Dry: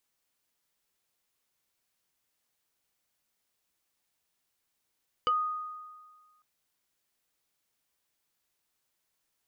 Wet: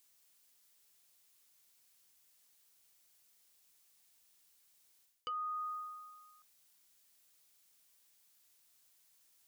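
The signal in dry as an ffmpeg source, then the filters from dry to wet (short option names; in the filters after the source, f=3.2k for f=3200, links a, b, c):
-f lavfi -i "aevalsrc='0.0794*pow(10,-3*t/1.58)*sin(2*PI*1240*t+0.94*pow(10,-3*t/0.1)*sin(2*PI*1.4*1240*t))':d=1.15:s=44100"
-af "highshelf=f=2.9k:g=11.5,areverse,acompressor=threshold=-38dB:ratio=12,areverse"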